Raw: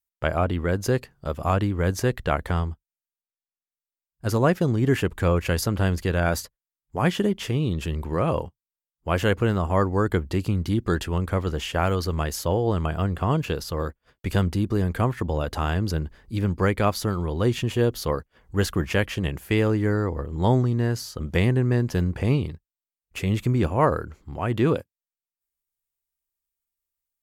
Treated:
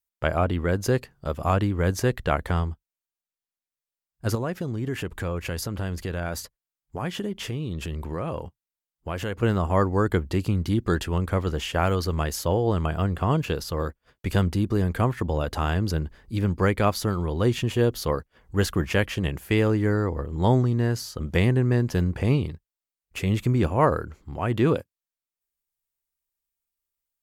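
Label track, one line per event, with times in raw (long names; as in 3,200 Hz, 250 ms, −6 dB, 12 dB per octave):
4.350000	9.430000	downward compressor 2.5 to 1, threshold −29 dBFS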